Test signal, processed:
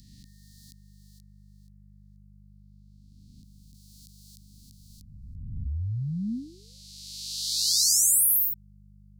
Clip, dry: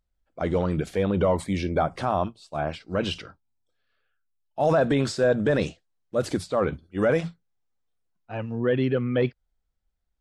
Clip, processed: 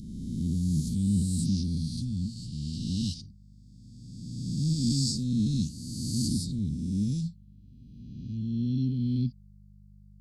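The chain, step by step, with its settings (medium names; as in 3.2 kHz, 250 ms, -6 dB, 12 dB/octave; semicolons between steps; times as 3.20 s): reverse spectral sustain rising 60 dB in 1.88 s; mains buzz 50 Hz, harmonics 4, -53 dBFS -3 dB/octave; Chebyshev band-stop 240–4300 Hz, order 4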